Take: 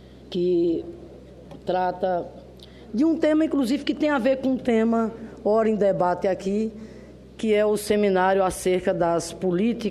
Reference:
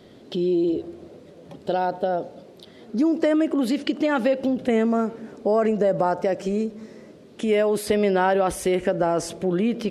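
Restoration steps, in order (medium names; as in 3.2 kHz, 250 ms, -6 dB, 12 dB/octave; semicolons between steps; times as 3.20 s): de-hum 63.3 Hz, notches 3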